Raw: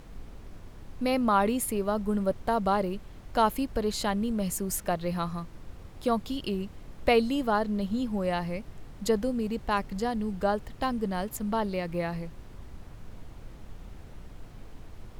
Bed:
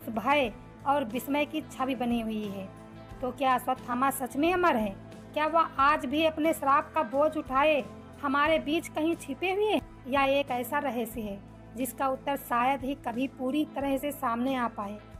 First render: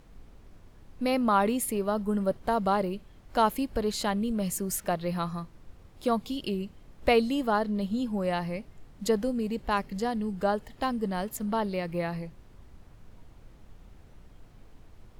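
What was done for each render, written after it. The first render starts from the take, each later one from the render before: noise print and reduce 7 dB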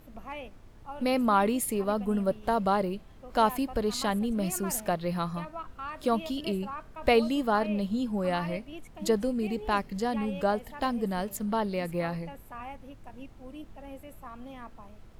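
add bed -15.5 dB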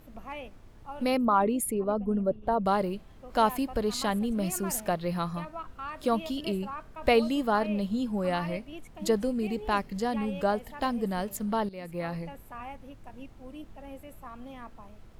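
1.17–2.66 formant sharpening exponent 1.5; 11.69–12.21 fade in, from -14.5 dB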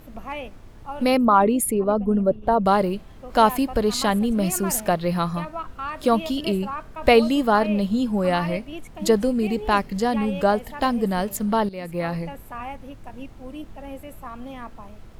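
gain +7.5 dB

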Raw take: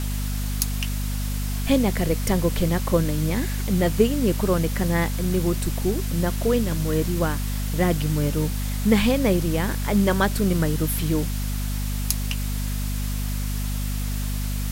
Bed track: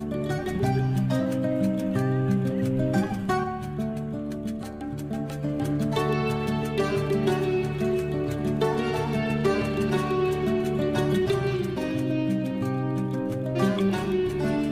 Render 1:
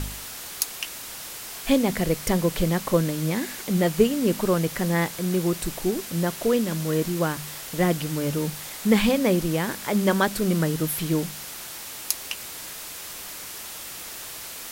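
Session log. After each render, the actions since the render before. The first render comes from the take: de-hum 50 Hz, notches 5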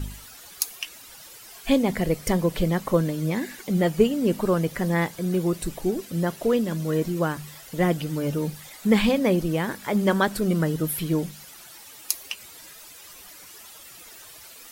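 denoiser 12 dB, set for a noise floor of -38 dBFS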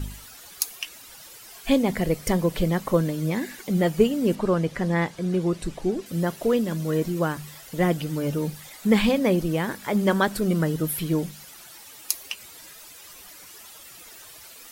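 4.35–6.06 air absorption 55 m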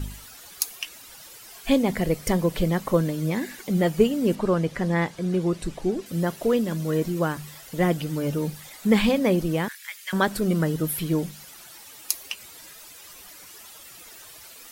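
9.68–10.13 Chebyshev high-pass 1900 Hz, order 3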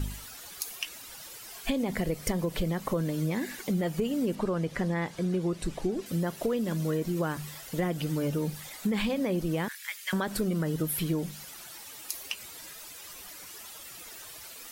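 limiter -14.5 dBFS, peak gain reduction 11 dB; compressor 4:1, threshold -26 dBFS, peak gain reduction 7 dB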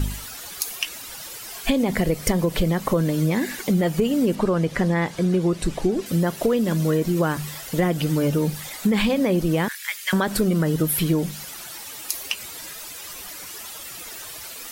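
gain +8.5 dB

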